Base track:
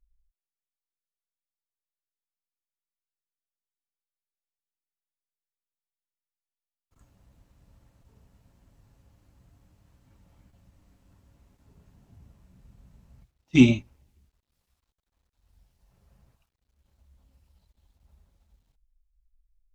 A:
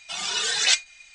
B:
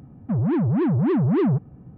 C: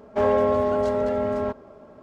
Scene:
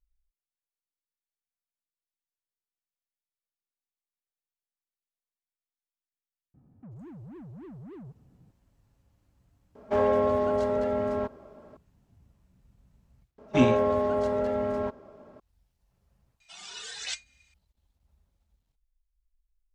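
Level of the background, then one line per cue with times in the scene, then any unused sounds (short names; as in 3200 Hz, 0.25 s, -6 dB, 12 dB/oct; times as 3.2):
base track -7 dB
6.54 add B -15.5 dB + compressor 2.5:1, threshold -33 dBFS
9.75 add C -3.5 dB
13.38 add C -4 dB
16.4 add A -15.5 dB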